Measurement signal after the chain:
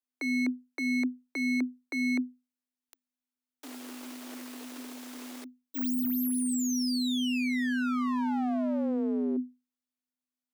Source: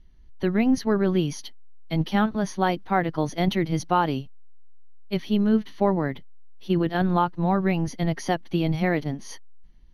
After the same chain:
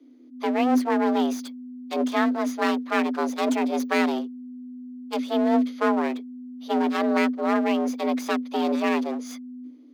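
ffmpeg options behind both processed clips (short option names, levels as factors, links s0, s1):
-af "aeval=exprs='abs(val(0))':c=same,afreqshift=250"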